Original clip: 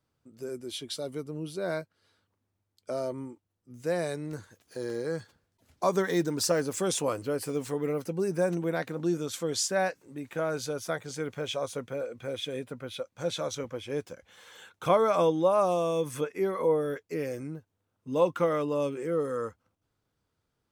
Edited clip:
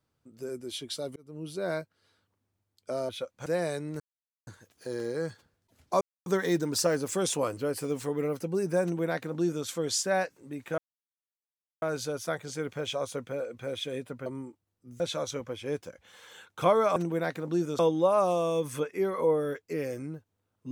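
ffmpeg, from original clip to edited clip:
-filter_complex "[0:a]asplit=11[a][b][c][d][e][f][g][h][i][j][k];[a]atrim=end=1.16,asetpts=PTS-STARTPTS,afade=t=out:st=1.156:d=0.004:c=hsin[l];[b]atrim=start=1.16:end=3.092,asetpts=PTS-STARTPTS,afade=t=in:d=0.36[m];[c]atrim=start=12.868:end=13.242[n];[d]atrim=start=3.828:end=4.37,asetpts=PTS-STARTPTS,afade=t=out:st=0.538:d=0.004:c=hsin,apad=pad_dur=0.47[o];[e]atrim=start=4.37:end=5.91,asetpts=PTS-STARTPTS,afade=t=in:d=0.004:c=hsin,afade=t=out:st=1.536:d=0.004:c=hsin,apad=pad_dur=0.25[p];[f]atrim=start=5.91:end=10.43,asetpts=PTS-STARTPTS,afade=t=in:d=0.004:c=hsin,afade=t=out:st=4.516:d=0.004:c=hsin,apad=pad_dur=1.04[q];[g]atrim=start=10.43:end=12.872,asetpts=PTS-STARTPTS,afade=t=in:d=0.004:c=hsin[r];[h]atrim=start=3.088:end=3.832[s];[i]atrim=start=13.238:end=15.202[t];[j]atrim=start=8.478:end=9.312[u];[k]atrim=start=15.198[v];[l][m]concat=n=2:v=0:a=1[w];[w][n]acrossfade=d=0.004:c1=hsin:c2=hsin[x];[o][p][q][r]concat=n=4:v=0:a=1[y];[x][y]acrossfade=d=0.004:c1=hsin:c2=hsin[z];[z][s]acrossfade=d=0.004:c1=hsin:c2=hsin[aa];[aa][t]acrossfade=d=0.004:c1=hsin:c2=hsin[ab];[ab][u]acrossfade=d=0.004:c1=hsin:c2=hsin[ac];[ac][v]acrossfade=d=0.004:c1=hsin:c2=hsin"

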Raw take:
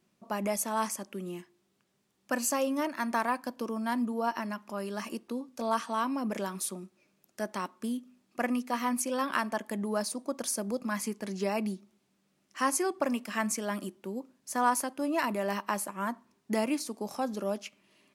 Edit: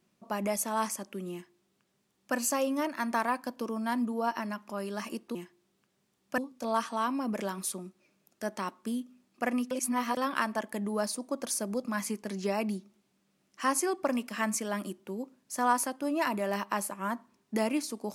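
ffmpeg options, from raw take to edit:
-filter_complex "[0:a]asplit=5[a][b][c][d][e];[a]atrim=end=5.352[f];[b]atrim=start=1.318:end=2.352[g];[c]atrim=start=5.348:end=8.682[h];[d]atrim=start=8.678:end=9.142,asetpts=PTS-STARTPTS,areverse[i];[e]atrim=start=9.138[j];[f][g]acrossfade=d=0.004:c1=hsin:c2=hsin[k];[k][h]acrossfade=d=0.004:c1=hsin:c2=hsin[l];[l][i]acrossfade=d=0.004:c1=hsin:c2=hsin[m];[m][j]acrossfade=d=0.004:c1=hsin:c2=hsin"

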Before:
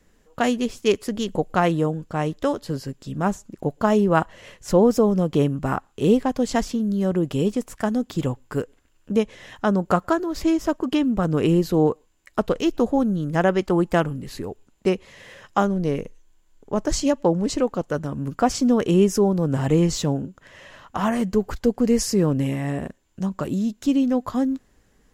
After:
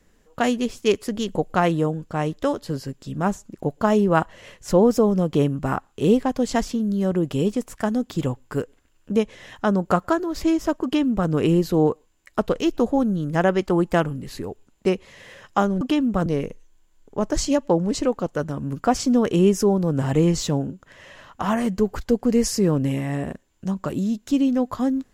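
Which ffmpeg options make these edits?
-filter_complex "[0:a]asplit=3[a][b][c];[a]atrim=end=15.812[d];[b]atrim=start=10.838:end=11.292[e];[c]atrim=start=15.808[f];[d][e]acrossfade=d=0.004:c1=hsin:c2=hsin[g];[g][f]acrossfade=d=0.004:c1=hsin:c2=hsin"

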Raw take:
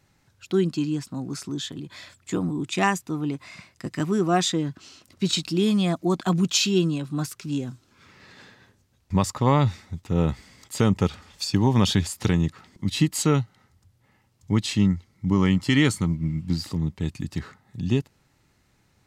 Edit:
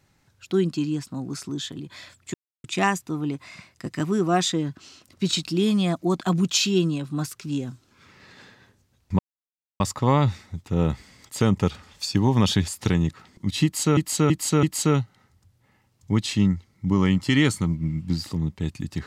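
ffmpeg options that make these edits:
-filter_complex "[0:a]asplit=7[a][b][c][d][e][f][g];[a]atrim=end=2.34,asetpts=PTS-STARTPTS,afade=t=out:st=2.336:d=0.004:c=hsin[h];[b]atrim=start=2.34:end=2.64,asetpts=PTS-STARTPTS,volume=0[i];[c]atrim=start=2.64:end=9.19,asetpts=PTS-STARTPTS,afade=t=in:d=0.004:c=hsin,afade=t=out:st=6.546:d=0.004:c=hsin,apad=pad_dur=0.61[j];[d]atrim=start=9.19:end=13.362,asetpts=PTS-STARTPTS,afade=t=in:d=0.004:c=hsin[k];[e]atrim=start=13.028:end=13.362[l];[f]atrim=start=13.028:end=13.362[m];[g]atrim=start=13.028[n];[h][i][j][k]concat=n=4:v=0:a=1[o];[o][l]acrossfade=d=0.004:c1=hsin:c2=hsin[p];[p][m]acrossfade=d=0.004:c1=hsin:c2=hsin[q];[q][n]acrossfade=d=0.004:c1=hsin:c2=hsin"

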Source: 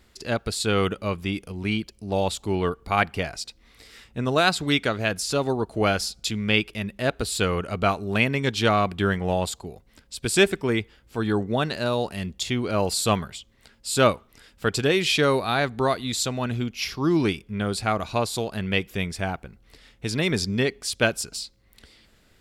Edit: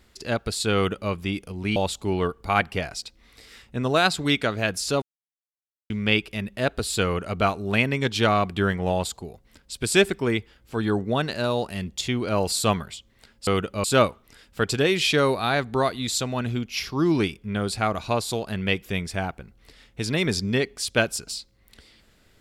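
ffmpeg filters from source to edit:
-filter_complex "[0:a]asplit=6[a][b][c][d][e][f];[a]atrim=end=1.762[g];[b]atrim=start=2.178:end=5.44,asetpts=PTS-STARTPTS,afade=t=out:st=3.258:d=0.004:c=hsin[h];[c]atrim=start=5.44:end=6.32,asetpts=PTS-STARTPTS,volume=0[i];[d]atrim=start=6.32:end=13.892,asetpts=PTS-STARTPTS,afade=t=in:d=0.004:c=hsin[j];[e]atrim=start=0.748:end=1.122[k];[f]atrim=start=13.888[l];[h][i][j]concat=n=3:v=0:a=1[m];[g][m]acrossfade=d=0.004:c1=hsin:c2=hsin[n];[n][k]acrossfade=d=0.004:c1=hsin:c2=hsin[o];[o][l]acrossfade=d=0.004:c1=hsin:c2=hsin"

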